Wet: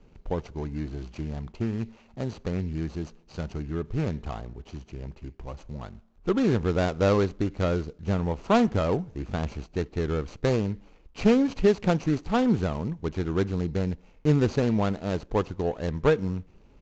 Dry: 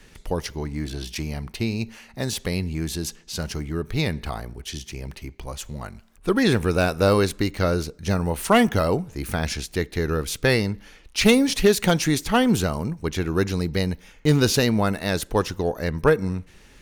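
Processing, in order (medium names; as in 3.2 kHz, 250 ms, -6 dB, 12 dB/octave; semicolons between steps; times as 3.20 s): median filter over 25 samples; resampled via 16 kHz; trim -3 dB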